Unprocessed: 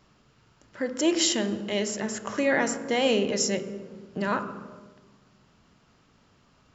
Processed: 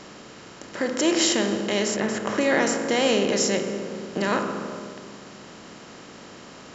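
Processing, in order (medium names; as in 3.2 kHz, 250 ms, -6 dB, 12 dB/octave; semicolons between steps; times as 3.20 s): spectral levelling over time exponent 0.6; 1.94–2.41 s: tone controls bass +3 dB, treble -8 dB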